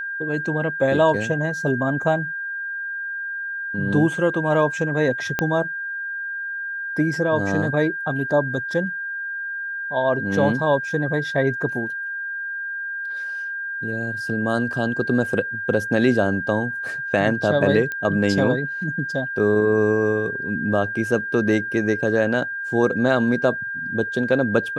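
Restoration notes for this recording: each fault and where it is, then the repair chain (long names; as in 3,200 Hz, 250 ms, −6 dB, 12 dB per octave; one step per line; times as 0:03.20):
whistle 1,600 Hz −26 dBFS
0:05.39: click −6 dBFS
0:17.92: click −15 dBFS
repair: click removal
notch filter 1,600 Hz, Q 30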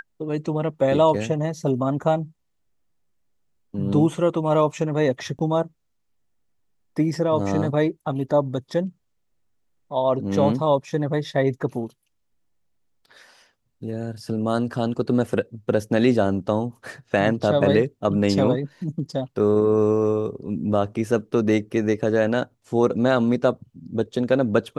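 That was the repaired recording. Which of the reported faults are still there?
0:05.39: click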